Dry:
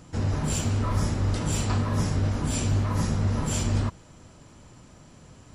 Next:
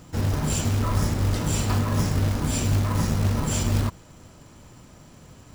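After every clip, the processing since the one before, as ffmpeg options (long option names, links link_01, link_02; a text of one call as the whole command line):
ffmpeg -i in.wav -af "acrusher=bits=4:mode=log:mix=0:aa=0.000001,volume=2dB" out.wav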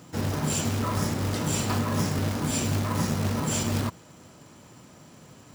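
ffmpeg -i in.wav -af "highpass=130" out.wav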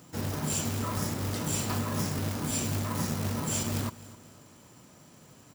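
ffmpeg -i in.wav -af "highshelf=frequency=8900:gain=8.5,aecho=1:1:257|514|771:0.119|0.0475|0.019,volume=-5dB" out.wav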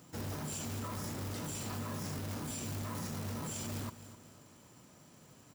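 ffmpeg -i in.wav -af "alimiter=level_in=3dB:limit=-24dB:level=0:latency=1:release=11,volume=-3dB,volume=-4.5dB" out.wav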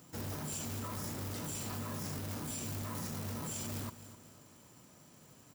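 ffmpeg -i in.wav -af "highshelf=frequency=9600:gain=5.5,volume=-1dB" out.wav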